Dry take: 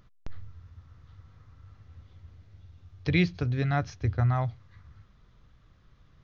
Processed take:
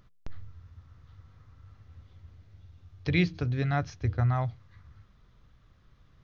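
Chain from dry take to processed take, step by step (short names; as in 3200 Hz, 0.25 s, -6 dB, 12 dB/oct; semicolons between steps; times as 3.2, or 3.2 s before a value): de-hum 158.6 Hz, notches 3; gain -1 dB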